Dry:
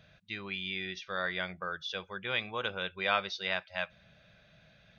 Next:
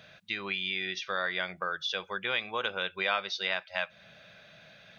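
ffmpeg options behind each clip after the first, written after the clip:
-af "highpass=f=350:p=1,acompressor=threshold=-41dB:ratio=2,volume=9dB"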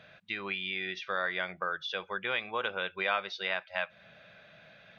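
-af "bass=f=250:g=-2,treble=f=4k:g=-12"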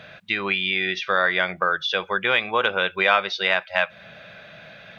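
-af "acontrast=61,volume=5.5dB"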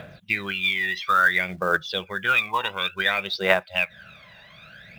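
-filter_complex "[0:a]aphaser=in_gain=1:out_gain=1:delay=1.1:decay=0.8:speed=0.57:type=triangular,asplit=2[a][b];[b]acrusher=bits=4:mode=log:mix=0:aa=0.000001,volume=-4dB[c];[a][c]amix=inputs=2:normalize=0,volume=-10dB"

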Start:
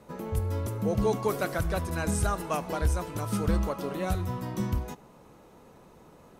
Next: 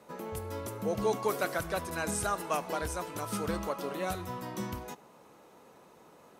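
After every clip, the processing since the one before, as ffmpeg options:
-af "highpass=f=400:p=1"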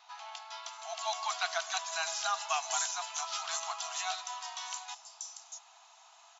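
-filter_complex "[0:a]afftfilt=real='re*between(b*sr/4096,640,7500)':imag='im*between(b*sr/4096,640,7500)':win_size=4096:overlap=0.75,acrossover=split=5500[a][b];[b]adelay=640[c];[a][c]amix=inputs=2:normalize=0,aexciter=amount=3.8:drive=5.5:freq=2.8k"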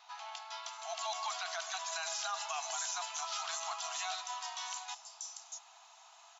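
-af "alimiter=level_in=4.5dB:limit=-24dB:level=0:latency=1:release=29,volume=-4.5dB"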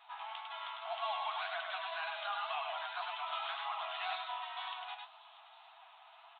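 -af "aecho=1:1:101:0.668,aresample=8000,aresample=44100,flanger=delay=7.1:depth=8.7:regen=35:speed=1.9:shape=sinusoidal,volume=4dB"

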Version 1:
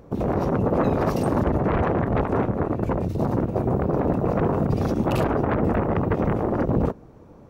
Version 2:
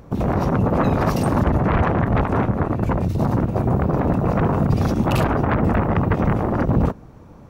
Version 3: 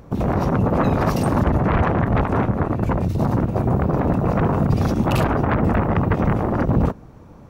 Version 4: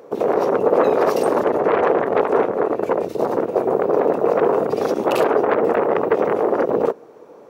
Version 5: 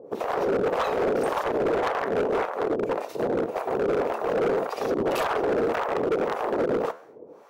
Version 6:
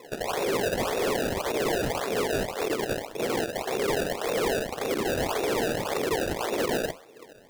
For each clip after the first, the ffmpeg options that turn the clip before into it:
-af "acontrast=37,equalizer=f=430:w=0.93:g=-7,volume=1dB"
-af anull
-af "highpass=f=440:t=q:w=3.7"
-filter_complex "[0:a]acrossover=split=700[a][b];[a]aeval=exprs='val(0)*(1-1/2+1/2*cos(2*PI*1.8*n/s))':c=same[c];[b]aeval=exprs='val(0)*(1-1/2-1/2*cos(2*PI*1.8*n/s))':c=same[d];[c][d]amix=inputs=2:normalize=0,flanger=delay=7.3:depth=8.8:regen=-84:speed=0.82:shape=sinusoidal,asoftclip=type=hard:threshold=-25.5dB,volume=5dB"
-af "acrusher=samples=28:mix=1:aa=0.000001:lfo=1:lforange=28:lforate=1.8,volume=-2.5dB"

